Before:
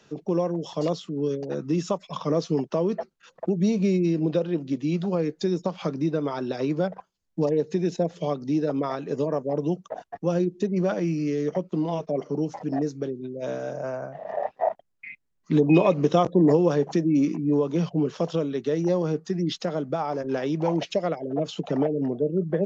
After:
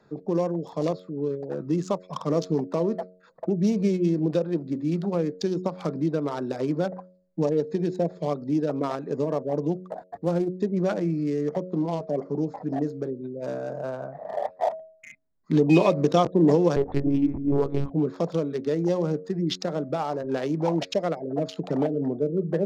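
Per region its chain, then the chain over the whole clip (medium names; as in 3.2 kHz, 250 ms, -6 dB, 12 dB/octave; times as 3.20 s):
0.91–1.60 s: low-pass 3.2 kHz 6 dB/octave + peaking EQ 200 Hz -4 dB 1.2 oct
9.85–10.60 s: CVSD coder 64 kbps + treble shelf 5.8 kHz -10.5 dB + loudspeaker Doppler distortion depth 0.15 ms
16.76–17.91 s: self-modulated delay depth 0.12 ms + monotone LPC vocoder at 8 kHz 140 Hz + tape noise reduction on one side only decoder only
whole clip: local Wiener filter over 15 samples; peaking EQ 5.6 kHz +6 dB 1.9 oct; de-hum 91.59 Hz, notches 7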